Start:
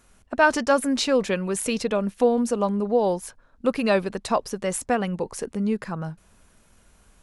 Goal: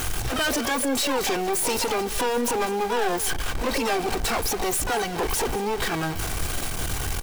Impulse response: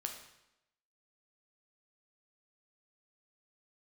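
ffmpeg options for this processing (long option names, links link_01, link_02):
-filter_complex "[0:a]aeval=exprs='val(0)+0.5*0.0631*sgn(val(0))':channel_layout=same,aecho=1:1:2.6:0.82,asplit=2[link_01][link_02];[link_02]acrusher=bits=5:dc=4:mix=0:aa=0.000001,volume=-10dB[link_03];[link_01][link_03]amix=inputs=2:normalize=0,aeval=exprs='(tanh(17.8*val(0)+0.3)-tanh(0.3))/17.8':channel_layout=same,acrusher=bits=4:mode=log:mix=0:aa=0.000001,asplit=2[link_04][link_05];[link_05]asetrate=88200,aresample=44100,atempo=0.5,volume=-3dB[link_06];[link_04][link_06]amix=inputs=2:normalize=0,aecho=1:1:203:0.15,volume=1.5dB"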